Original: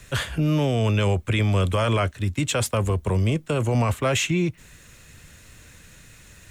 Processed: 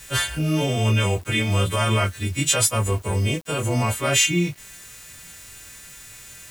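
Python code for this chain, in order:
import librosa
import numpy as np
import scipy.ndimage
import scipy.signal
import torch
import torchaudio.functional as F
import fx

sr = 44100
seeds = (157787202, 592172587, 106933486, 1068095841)

y = fx.freq_snap(x, sr, grid_st=2)
y = fx.chorus_voices(y, sr, voices=2, hz=1.1, base_ms=20, depth_ms=3.0, mix_pct=30)
y = fx.quant_dither(y, sr, seeds[0], bits=8, dither='none')
y = y * librosa.db_to_amplitude(2.0)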